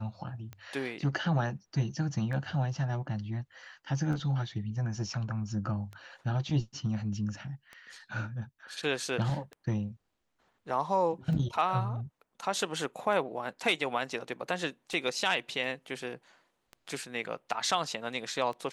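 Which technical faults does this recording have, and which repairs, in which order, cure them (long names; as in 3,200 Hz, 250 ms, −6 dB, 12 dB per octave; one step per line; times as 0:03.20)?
scratch tick 33 1/3 rpm −29 dBFS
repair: click removal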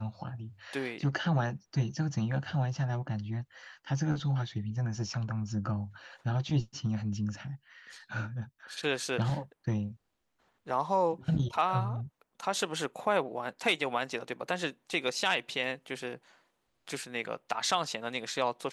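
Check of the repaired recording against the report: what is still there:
none of them is left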